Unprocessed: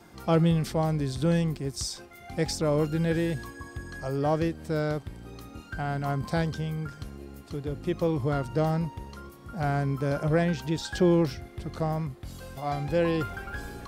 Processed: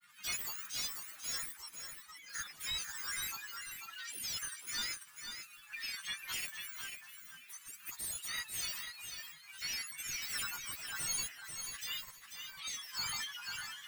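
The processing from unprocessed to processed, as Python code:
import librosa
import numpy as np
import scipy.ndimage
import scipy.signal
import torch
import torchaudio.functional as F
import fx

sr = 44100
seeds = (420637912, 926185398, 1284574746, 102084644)

p1 = fx.octave_mirror(x, sr, pivot_hz=1800.0)
p2 = scipy.signal.sosfilt(scipy.signal.ellip(3, 1.0, 40, [130.0, 1400.0], 'bandstop', fs=sr, output='sos'), p1)
p3 = fx.granulator(p2, sr, seeds[0], grain_ms=100.0, per_s=20.0, spray_ms=35.0, spread_st=7)
p4 = 10.0 ** (-33.5 / 20.0) * (np.abs((p3 / 10.0 ** (-33.5 / 20.0) + 3.0) % 4.0 - 2.0) - 1.0)
p5 = p3 + F.gain(torch.from_numpy(p4), -3.5).numpy()
p6 = fx.bass_treble(p5, sr, bass_db=9, treble_db=-6)
p7 = p6 + fx.echo_feedback(p6, sr, ms=492, feedback_pct=15, wet_db=-7.0, dry=0)
y = F.gain(torch.from_numpy(p7), -3.5).numpy()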